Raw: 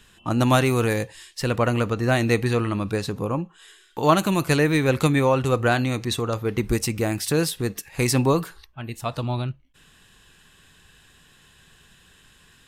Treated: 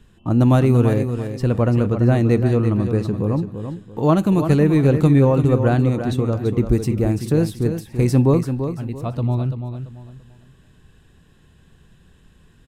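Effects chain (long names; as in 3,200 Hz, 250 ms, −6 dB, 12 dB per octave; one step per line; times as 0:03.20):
tilt shelving filter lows +9 dB, about 760 Hz
on a send: repeating echo 338 ms, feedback 30%, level −8.5 dB
on the sum: level −1.5 dB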